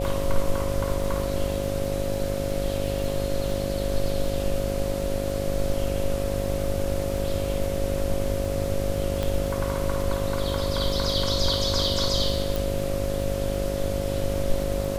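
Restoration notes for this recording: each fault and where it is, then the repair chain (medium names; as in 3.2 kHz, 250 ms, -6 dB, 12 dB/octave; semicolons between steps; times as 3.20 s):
buzz 50 Hz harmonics 14 -30 dBFS
crackle 33 per s -31 dBFS
whine 550 Hz -30 dBFS
9.23 s: pop -14 dBFS
12.56 s: pop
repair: de-click; band-stop 550 Hz, Q 30; de-hum 50 Hz, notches 14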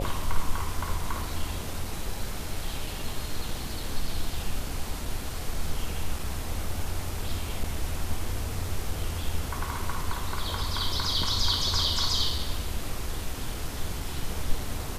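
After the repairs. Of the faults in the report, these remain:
12.56 s: pop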